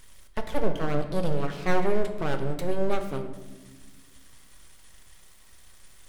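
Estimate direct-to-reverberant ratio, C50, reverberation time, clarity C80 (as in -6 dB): 5.5 dB, 9.5 dB, 1.3 s, 11.5 dB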